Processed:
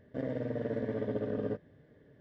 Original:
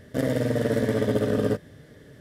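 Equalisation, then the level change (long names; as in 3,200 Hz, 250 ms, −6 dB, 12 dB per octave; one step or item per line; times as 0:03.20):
head-to-tape spacing loss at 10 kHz 37 dB
low-shelf EQ 180 Hz −6.5 dB
notch filter 1,300 Hz, Q 8.7
−7.5 dB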